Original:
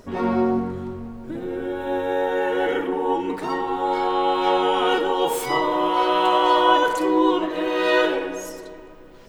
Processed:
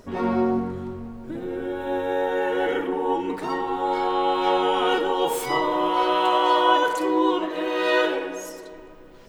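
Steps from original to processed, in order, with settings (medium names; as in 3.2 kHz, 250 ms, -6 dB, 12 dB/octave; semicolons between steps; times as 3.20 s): 6.15–8.73 s: bass shelf 140 Hz -9 dB; trim -1.5 dB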